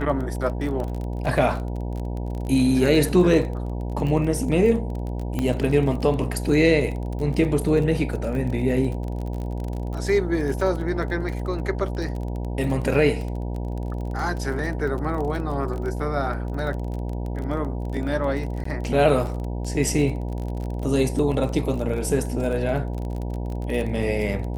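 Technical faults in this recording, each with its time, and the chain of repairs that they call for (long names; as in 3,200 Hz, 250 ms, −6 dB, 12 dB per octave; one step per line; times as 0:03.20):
mains buzz 60 Hz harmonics 16 −28 dBFS
surface crackle 29 per second −29 dBFS
0:05.39: click −13 dBFS
0:18.64–0:18.65: drop-out 14 ms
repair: click removal
hum removal 60 Hz, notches 16
repair the gap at 0:18.64, 14 ms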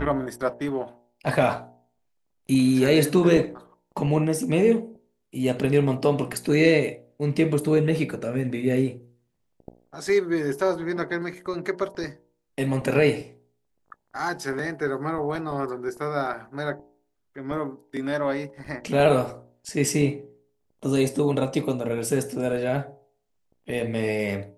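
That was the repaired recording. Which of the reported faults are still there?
none of them is left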